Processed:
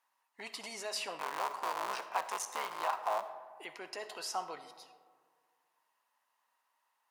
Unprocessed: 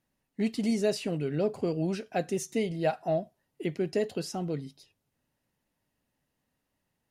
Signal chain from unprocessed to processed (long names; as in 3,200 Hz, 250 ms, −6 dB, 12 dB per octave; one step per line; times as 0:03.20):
0:01.18–0:03.21: sub-harmonics by changed cycles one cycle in 3, muted
brickwall limiter −24.5 dBFS, peak gain reduction 9 dB
high-pass with resonance 1,000 Hz, resonance Q 4.9
convolution reverb RT60 1.8 s, pre-delay 25 ms, DRR 11 dB